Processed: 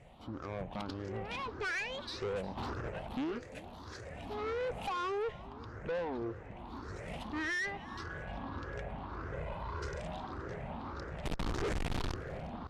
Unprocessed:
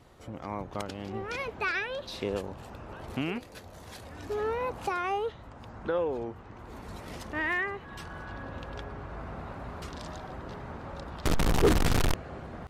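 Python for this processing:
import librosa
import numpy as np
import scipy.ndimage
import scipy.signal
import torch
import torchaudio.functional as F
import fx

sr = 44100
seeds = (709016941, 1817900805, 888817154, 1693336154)

y = fx.spec_ripple(x, sr, per_octave=0.51, drift_hz=1.7, depth_db=14)
y = fx.over_compress(y, sr, threshold_db=-43.0, ratio=-0.5, at=(2.56, 3.12), fade=0.02)
y = fx.high_shelf(y, sr, hz=4800.0, db=5.5, at=(4.49, 5.12))
y = fx.comb(y, sr, ms=2.0, depth=0.83, at=(9.33, 10.0))
y = fx.tube_stage(y, sr, drive_db=31.0, bias=0.4)
y = fx.air_absorb(y, sr, metres=66.0)
y = y + 10.0 ** (-20.5 / 20.0) * np.pad(y, (int(356 * sr / 1000.0), 0))[:len(y)]
y = F.gain(torch.from_numpy(y), -1.5).numpy()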